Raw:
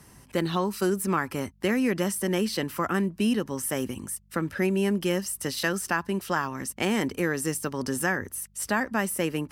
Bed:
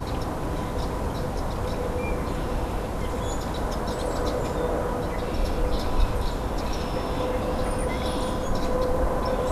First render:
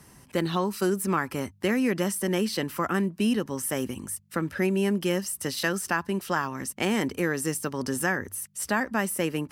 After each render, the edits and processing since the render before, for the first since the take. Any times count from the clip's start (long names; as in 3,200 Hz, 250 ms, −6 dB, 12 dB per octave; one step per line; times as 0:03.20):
hum removal 50 Hz, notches 2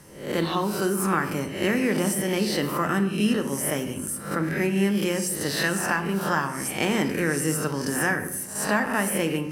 peak hold with a rise ahead of every peak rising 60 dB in 0.55 s
rectangular room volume 250 cubic metres, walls mixed, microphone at 0.49 metres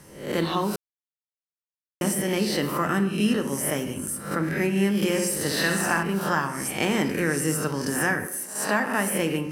0:00.76–0:02.01: silence
0:04.96–0:06.03: flutter between parallel walls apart 11.3 metres, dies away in 0.65 s
0:08.25–0:09.18: high-pass filter 380 Hz → 110 Hz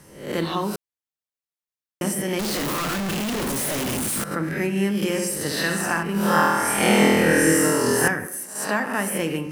0:02.39–0:04.24: sign of each sample alone
0:06.12–0:08.08: flutter between parallel walls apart 4.2 metres, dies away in 1.5 s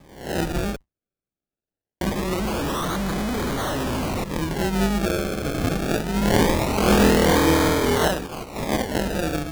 sub-octave generator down 2 octaves, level −5 dB
sample-and-hold swept by an LFO 31×, swing 100% 0.23 Hz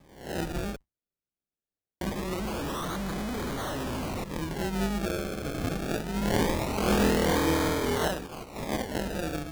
level −7.5 dB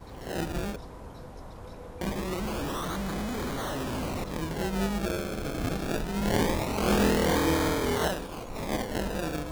mix in bed −15.5 dB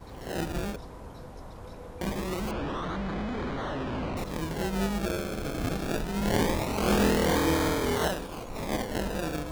0:02.51–0:04.17: low-pass filter 3,100 Hz